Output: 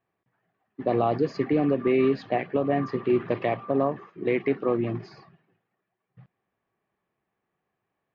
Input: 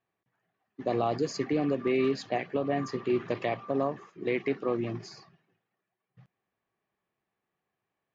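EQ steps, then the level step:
high-frequency loss of the air 290 metres
+5.5 dB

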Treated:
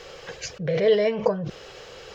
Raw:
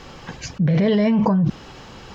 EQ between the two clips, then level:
low shelf with overshoot 350 Hz −10 dB, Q 3
parametric band 910 Hz −10 dB 0.83 octaves
0.0 dB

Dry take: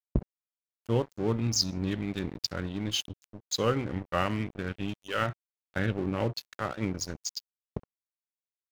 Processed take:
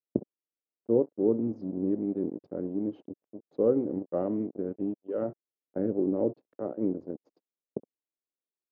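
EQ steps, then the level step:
flat-topped band-pass 400 Hz, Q 1.1
high-frequency loss of the air 80 metres
low-shelf EQ 490 Hz +10 dB
0.0 dB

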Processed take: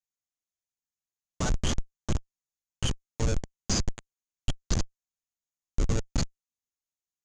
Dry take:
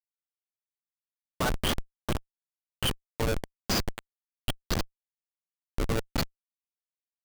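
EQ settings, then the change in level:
transistor ladder low-pass 7,100 Hz, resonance 75%
low-shelf EQ 250 Hz +12 dB
+5.5 dB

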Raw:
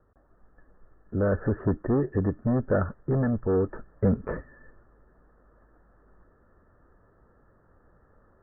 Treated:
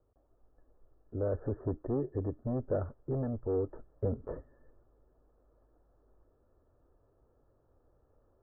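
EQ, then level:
Chebyshev low-pass filter 700 Hz, order 2
parametric band 190 Hz −14 dB 0.34 octaves
−6.5 dB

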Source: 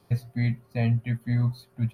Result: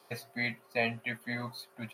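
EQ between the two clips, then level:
high-pass filter 510 Hz 12 dB per octave
dynamic equaliser 2,600 Hz, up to +4 dB, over −55 dBFS, Q 2.5
+4.5 dB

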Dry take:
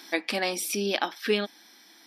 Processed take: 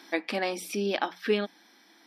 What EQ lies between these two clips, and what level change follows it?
high-shelf EQ 3,500 Hz −11 dB
mains-hum notches 60/120/180 Hz
0.0 dB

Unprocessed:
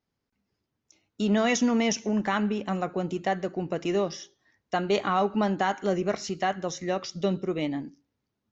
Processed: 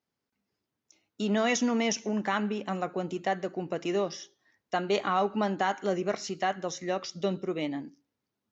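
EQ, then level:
high-pass filter 200 Hz 6 dB per octave
−1.5 dB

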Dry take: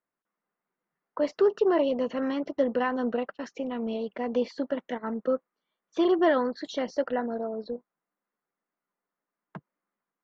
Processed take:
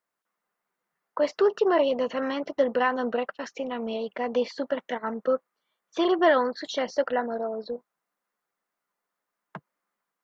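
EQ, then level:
low-shelf EQ 160 Hz −9.5 dB
parametric band 290 Hz −5.5 dB 1.4 octaves
+5.5 dB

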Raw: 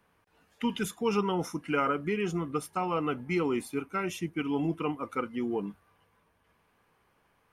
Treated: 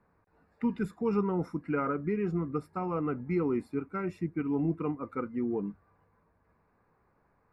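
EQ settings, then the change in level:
moving average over 14 samples
low-shelf EQ 210 Hz +3.5 dB
dynamic equaliser 790 Hz, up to −5 dB, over −46 dBFS, Q 1.1
0.0 dB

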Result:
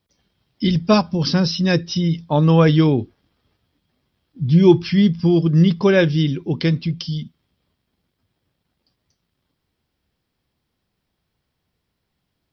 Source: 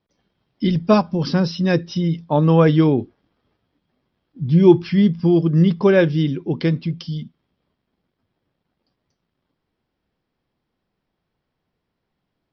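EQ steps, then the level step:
parametric band 72 Hz +8.5 dB 1.9 octaves
high-shelf EQ 2,100 Hz +7.5 dB
high-shelf EQ 4,300 Hz +5.5 dB
−2.0 dB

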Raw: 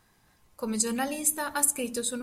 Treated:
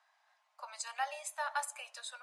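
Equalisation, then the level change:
Butterworth high-pass 610 Hz 96 dB per octave
head-to-tape spacing loss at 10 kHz 29 dB
high-shelf EQ 3,900 Hz +9.5 dB
−1.0 dB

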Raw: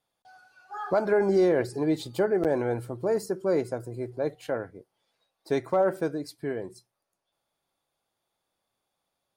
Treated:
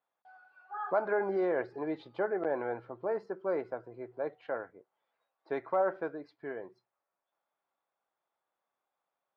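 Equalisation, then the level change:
resonant band-pass 1,200 Hz, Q 0.85
high-frequency loss of the air 290 metres
0.0 dB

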